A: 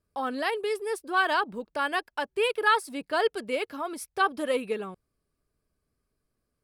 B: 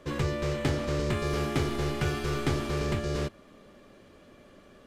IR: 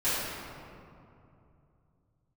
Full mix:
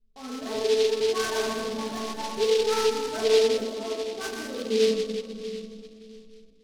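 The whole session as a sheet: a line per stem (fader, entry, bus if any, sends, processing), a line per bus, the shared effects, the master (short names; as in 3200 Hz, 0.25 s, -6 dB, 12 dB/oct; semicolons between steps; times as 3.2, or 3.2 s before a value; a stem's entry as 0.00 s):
+1.5 dB, 0.00 s, send -4.5 dB, tilt -4.5 dB/oct
-2.0 dB, 0.35 s, no send, dry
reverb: on, RT60 2.7 s, pre-delay 3 ms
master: LPF 1400 Hz 6 dB/oct; resonator 220 Hz, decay 0.3 s, harmonics all, mix 100%; noise-modulated delay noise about 3600 Hz, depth 0.087 ms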